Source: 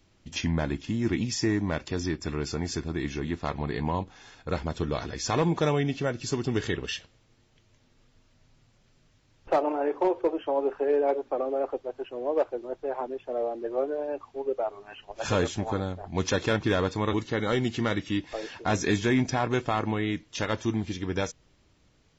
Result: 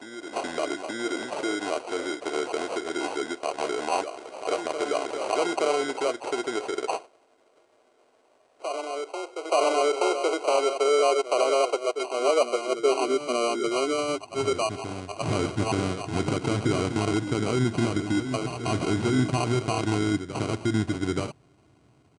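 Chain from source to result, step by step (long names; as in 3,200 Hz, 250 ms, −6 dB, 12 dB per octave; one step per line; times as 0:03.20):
low-pass filter 5,300 Hz 24 dB per octave
comb filter 2.9 ms, depth 53%
brickwall limiter −22 dBFS, peak gain reduction 9.5 dB
decimation without filtering 25×
high-pass filter sweep 520 Hz → 130 Hz, 0:12.63–0:13.83
backwards echo 876 ms −9 dB
level +3.5 dB
MP2 192 kbit/s 32,000 Hz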